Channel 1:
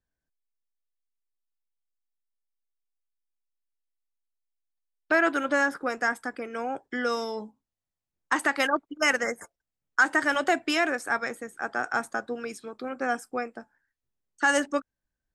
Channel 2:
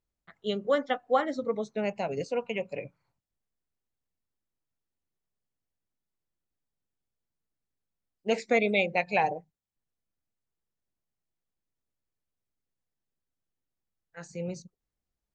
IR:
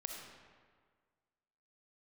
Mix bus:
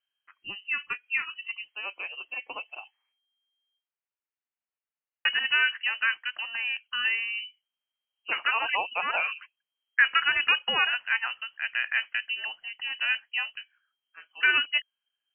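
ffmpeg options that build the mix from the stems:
-filter_complex "[0:a]volume=0.5dB,asplit=3[link_01][link_02][link_03];[link_01]atrim=end=3.74,asetpts=PTS-STARTPTS,afade=type=out:start_time=3.736:duration=0.004:curve=hsin[link_04];[link_02]atrim=start=3.74:end=5.25,asetpts=PTS-STARTPTS,volume=0[link_05];[link_03]atrim=start=5.25,asetpts=PTS-STARTPTS,afade=type=in:duration=0.004:curve=hsin[link_06];[link_04][link_05][link_06]concat=n=3:v=0:a=1[link_07];[1:a]highpass=frequency=990:poles=1,volume=0.5dB,asplit=2[link_08][link_09];[link_09]apad=whole_len=676655[link_10];[link_07][link_10]sidechaincompress=threshold=-30dB:ratio=8:attack=7.4:release=390[link_11];[link_11][link_08]amix=inputs=2:normalize=0,lowpass=frequency=2700:width_type=q:width=0.5098,lowpass=frequency=2700:width_type=q:width=0.6013,lowpass=frequency=2700:width_type=q:width=0.9,lowpass=frequency=2700:width_type=q:width=2.563,afreqshift=-3200,lowshelf=frequency=180:gain=-6"

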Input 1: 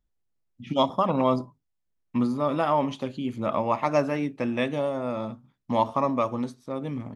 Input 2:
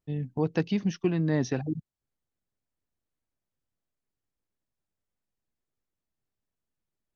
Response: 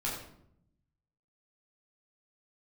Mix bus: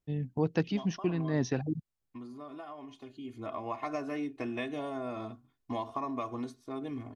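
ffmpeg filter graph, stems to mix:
-filter_complex "[0:a]aecho=1:1:2.8:0.94,acompressor=threshold=-24dB:ratio=6,volume=-7.5dB,afade=type=in:start_time=3.05:duration=0.78:silence=0.316228,asplit=2[link_01][link_02];[1:a]volume=-2dB[link_03];[link_02]apad=whole_len=315552[link_04];[link_03][link_04]sidechaincompress=threshold=-44dB:ratio=8:attack=8:release=121[link_05];[link_01][link_05]amix=inputs=2:normalize=0"

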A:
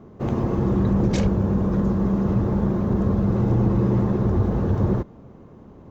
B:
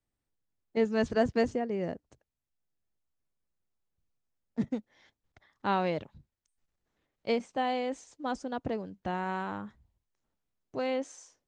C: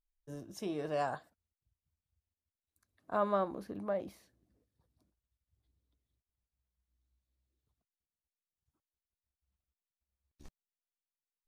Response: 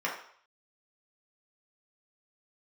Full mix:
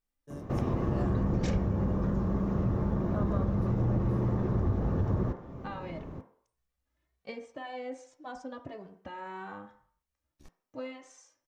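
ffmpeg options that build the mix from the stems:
-filter_complex "[0:a]lowshelf=frequency=130:gain=7.5,adelay=300,volume=-1dB,asplit=2[link_01][link_02];[link_02]volume=-9.5dB[link_03];[1:a]acompressor=threshold=-31dB:ratio=6,asplit=2[link_04][link_05];[link_05]adelay=2.2,afreqshift=1.8[link_06];[link_04][link_06]amix=inputs=2:normalize=1,volume=-5dB,asplit=2[link_07][link_08];[link_08]volume=-9.5dB[link_09];[2:a]volume=-1dB,asplit=2[link_10][link_11];[link_11]volume=-15dB[link_12];[3:a]atrim=start_sample=2205[link_13];[link_03][link_09][link_12]amix=inputs=3:normalize=0[link_14];[link_14][link_13]afir=irnorm=-1:irlink=0[link_15];[link_01][link_07][link_10][link_15]amix=inputs=4:normalize=0,acompressor=threshold=-34dB:ratio=2"

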